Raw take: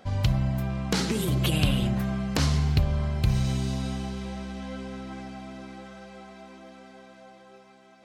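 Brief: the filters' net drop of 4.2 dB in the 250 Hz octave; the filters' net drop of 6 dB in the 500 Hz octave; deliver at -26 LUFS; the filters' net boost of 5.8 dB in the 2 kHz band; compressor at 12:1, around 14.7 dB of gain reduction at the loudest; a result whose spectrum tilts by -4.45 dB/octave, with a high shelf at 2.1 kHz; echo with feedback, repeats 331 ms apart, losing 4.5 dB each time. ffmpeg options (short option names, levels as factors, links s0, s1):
-af "equalizer=f=250:t=o:g=-5.5,equalizer=f=500:t=o:g=-7,equalizer=f=2000:t=o:g=4.5,highshelf=f=2100:g=5.5,acompressor=threshold=0.0224:ratio=12,aecho=1:1:331|662|993|1324|1655|1986|2317|2648|2979:0.596|0.357|0.214|0.129|0.0772|0.0463|0.0278|0.0167|0.01,volume=3.16"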